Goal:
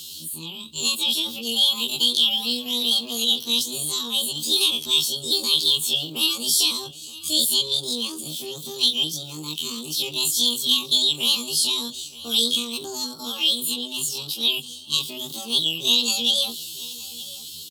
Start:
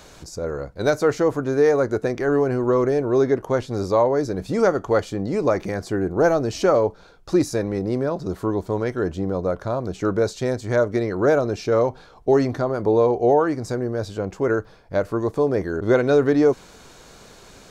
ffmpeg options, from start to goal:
ffmpeg -i in.wav -filter_complex "[0:a]afftfilt=real='re':imag='-im':win_size=2048:overlap=0.75,firequalizer=gain_entry='entry(220,0);entry(370,-22);entry(630,-13);entry(1100,-28);entry(1800,8);entry(3400,0);entry(9000,3)':delay=0.05:min_phase=1,acrossover=split=130|1300|5900[link_01][link_02][link_03][link_04];[link_01]acompressor=threshold=-47dB:ratio=4[link_05];[link_03]acompressor=threshold=-38dB:ratio=4[link_06];[link_04]acompressor=threshold=-59dB:ratio=4[link_07];[link_05][link_02][link_06][link_07]amix=inputs=4:normalize=0,highpass=frequency=54:width=0.5412,highpass=frequency=54:width=1.3066,asetrate=80880,aresample=44100,atempo=0.545254,bass=frequency=250:gain=5,treble=frequency=4000:gain=-11,acrossover=split=510|3300[link_08][link_09][link_10];[link_09]alimiter=level_in=10dB:limit=-24dB:level=0:latency=1:release=12,volume=-10dB[link_11];[link_10]dynaudnorm=framelen=230:gausssize=13:maxgain=6dB[link_12];[link_08][link_11][link_12]amix=inputs=3:normalize=0,aexciter=amount=15.2:drive=6:freq=2700,asplit=2[link_13][link_14];[link_14]aecho=0:1:923:0.112[link_15];[link_13][link_15]amix=inputs=2:normalize=0,volume=-1.5dB" out.wav

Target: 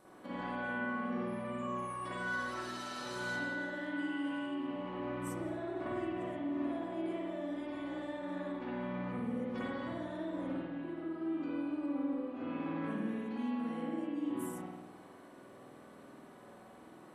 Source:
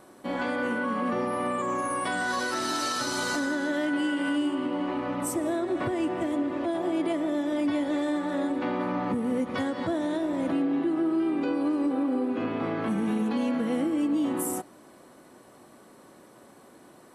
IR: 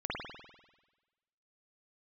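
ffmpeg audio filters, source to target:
-filter_complex "[0:a]acompressor=threshold=-34dB:ratio=6[link_01];[1:a]atrim=start_sample=2205[link_02];[link_01][link_02]afir=irnorm=-1:irlink=0,volume=-7.5dB"

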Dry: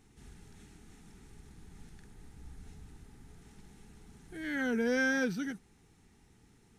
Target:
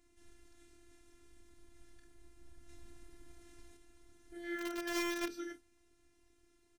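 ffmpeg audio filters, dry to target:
ffmpeg -i in.wav -filter_complex "[0:a]aecho=1:1:27|47:0.422|0.15,asplit=2[link_01][link_02];[link_02]acrusher=bits=3:mix=0:aa=0.000001,volume=-5.5dB[link_03];[link_01][link_03]amix=inputs=2:normalize=0,asettb=1/sr,asplit=3[link_04][link_05][link_06];[link_04]atrim=end=2.694[link_07];[link_05]atrim=start=2.69:end=3.77,asetpts=PTS-STARTPTS,afade=type=in:duration=0.004:curve=qsin,afade=type=out:start_time=1.076:duration=0.004:curve=qsin,acontrast=28[link_08];[link_06]atrim=start=3.766[link_09];[link_07][link_08]acrossfade=duration=0.004:curve1=hsin:curve2=qsin[link_10];[link_10][link_09]acrossfade=duration=0.004:curve1=qsin:curve2=hsin,afftfilt=real='hypot(re,im)*cos(PI*b)':imag='0':win_size=512:overlap=0.75,volume=-3.5dB" out.wav

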